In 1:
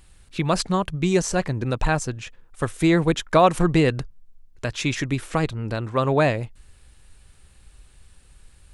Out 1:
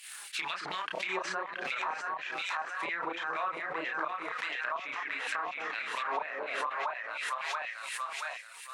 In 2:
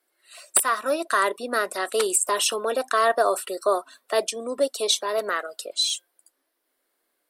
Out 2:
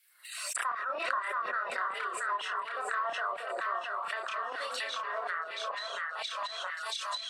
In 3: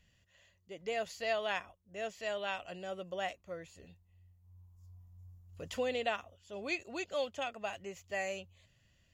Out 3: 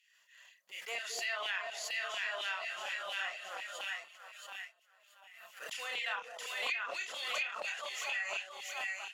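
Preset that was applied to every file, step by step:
in parallel at -11.5 dB: companded quantiser 4-bit; on the sum: split-band echo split 600 Hz, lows 0.222 s, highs 0.676 s, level -3.5 dB; LFO high-pass saw down 4.2 Hz 900–2600 Hz; expander -40 dBFS; chorus voices 4, 0.25 Hz, delay 30 ms, depth 3.9 ms; treble ducked by the level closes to 1300 Hz, closed at -24.5 dBFS; high shelf 8900 Hz +9 dB; compressor 4:1, threshold -33 dBFS; HPF 150 Hz 24 dB/oct; backwards sustainer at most 38 dB/s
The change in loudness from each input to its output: -12.5, -10.5, +1.0 LU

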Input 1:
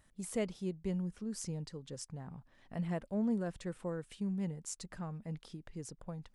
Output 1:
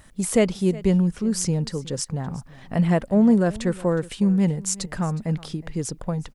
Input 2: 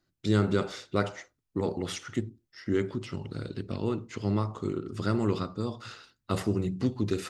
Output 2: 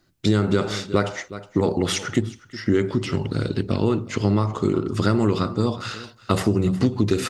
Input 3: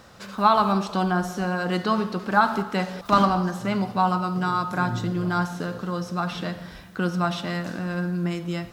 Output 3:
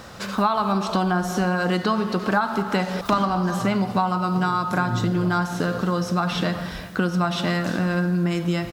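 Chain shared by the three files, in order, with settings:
echo 0.365 s -20 dB; compressor 6:1, threshold -27 dBFS; match loudness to -23 LUFS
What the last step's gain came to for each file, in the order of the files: +17.0, +12.5, +8.5 dB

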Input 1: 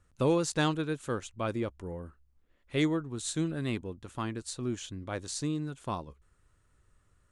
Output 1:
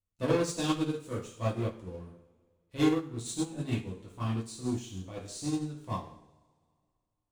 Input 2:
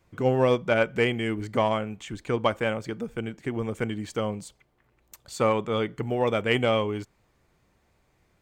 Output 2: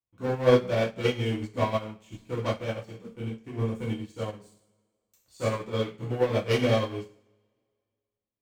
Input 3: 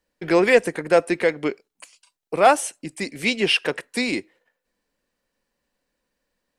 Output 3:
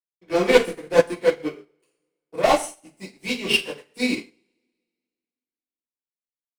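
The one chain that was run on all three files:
one-sided fold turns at -13.5 dBFS; bell 1600 Hz -10 dB 0.58 oct; sample leveller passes 3; two-slope reverb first 0.63 s, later 2.2 s, from -20 dB, DRR -5 dB; upward expander 2.5:1, over -21 dBFS; gain -8.5 dB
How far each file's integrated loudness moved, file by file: 0.0, -2.0, -1.0 LU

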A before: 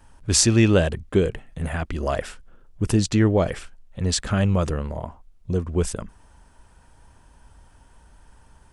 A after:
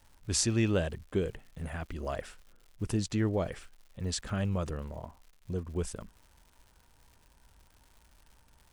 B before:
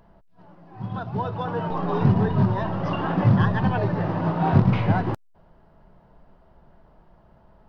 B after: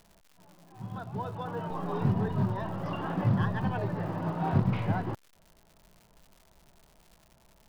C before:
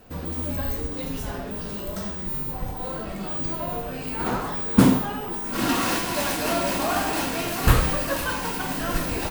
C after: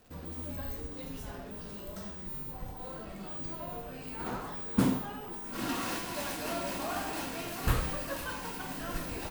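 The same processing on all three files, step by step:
crackle 220/s -38 dBFS; normalise peaks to -12 dBFS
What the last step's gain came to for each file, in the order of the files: -11.0, -8.5, -11.0 dB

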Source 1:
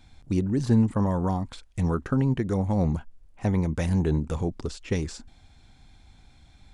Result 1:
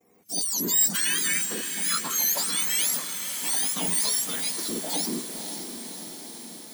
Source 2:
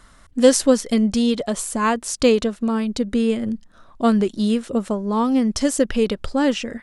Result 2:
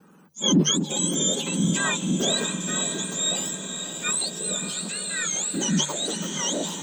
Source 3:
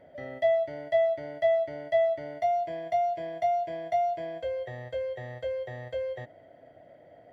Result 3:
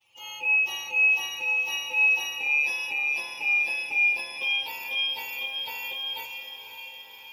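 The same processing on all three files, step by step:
spectrum mirrored in octaves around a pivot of 1300 Hz; notches 50/100/150 Hz; expander -54 dBFS; transient shaper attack -7 dB, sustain +5 dB; diffused feedback echo 0.544 s, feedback 67%, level -8 dB; match loudness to -24 LUFS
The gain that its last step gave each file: +5.5, -2.5, +3.5 dB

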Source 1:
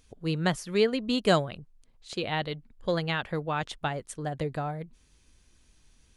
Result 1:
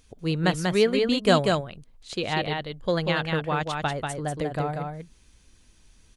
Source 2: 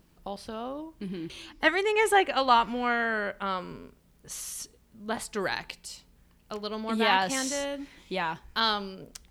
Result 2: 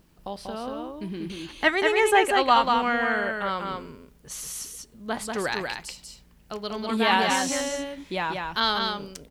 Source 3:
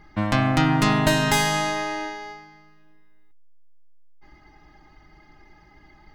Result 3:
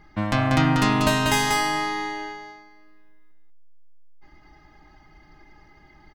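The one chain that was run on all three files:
echo 0.19 s -4 dB; normalise peaks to -6 dBFS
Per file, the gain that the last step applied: +3.0, +2.0, -1.5 dB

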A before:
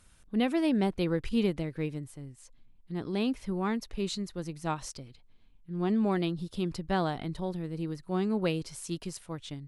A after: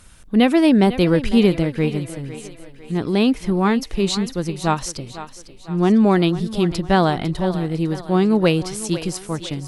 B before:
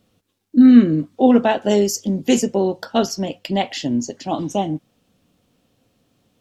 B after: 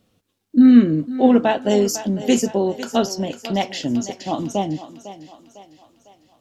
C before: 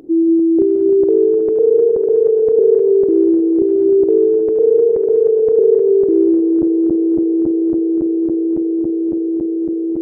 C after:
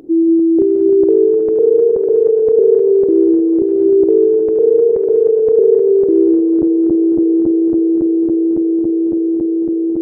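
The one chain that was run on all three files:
thinning echo 0.502 s, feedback 50%, high-pass 280 Hz, level -13 dB; normalise peaks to -2 dBFS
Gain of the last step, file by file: +13.0, -1.0, +1.5 dB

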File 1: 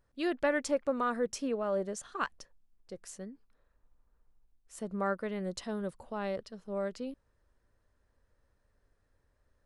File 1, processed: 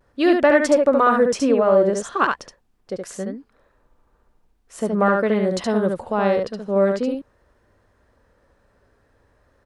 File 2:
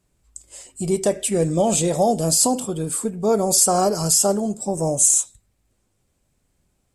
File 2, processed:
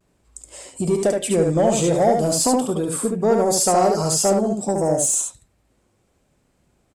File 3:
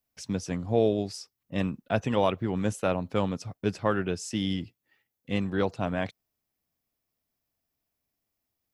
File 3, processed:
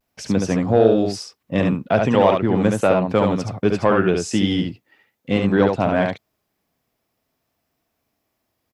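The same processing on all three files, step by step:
HPF 600 Hz 6 dB/oct; tilt -3 dB/oct; in parallel at +2 dB: compressor, threshold -30 dBFS; on the sum: vibrato 0.43 Hz 27 cents; soft clip -11 dBFS; on a send: echo 71 ms -4 dB; on the sum: match loudness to -19 LUFS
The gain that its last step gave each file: +10.0, +1.0, +7.5 dB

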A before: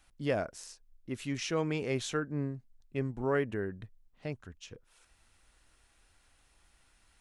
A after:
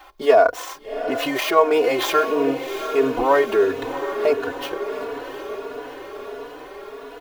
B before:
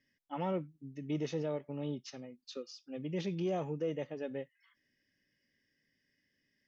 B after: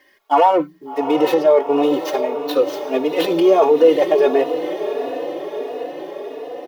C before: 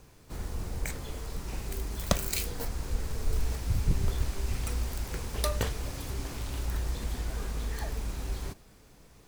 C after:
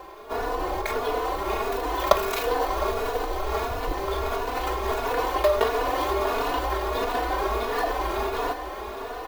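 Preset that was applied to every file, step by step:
median filter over 9 samples; tone controls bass -13 dB, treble +9 dB; comb 2.8 ms, depth 43%; de-hum 89.05 Hz, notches 2; in parallel at 0 dB: negative-ratio compressor -42 dBFS, ratio -0.5; on the sum: graphic EQ 125/500/1000/4000/8000 Hz -8/+9/+11/+4/-11 dB; on a send: diffused feedback echo 0.741 s, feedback 66%, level -10 dB; on the sum: endless flanger 3.4 ms +1.5 Hz; normalise peaks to -2 dBFS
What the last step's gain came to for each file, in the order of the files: +11.0, +16.0, +6.5 dB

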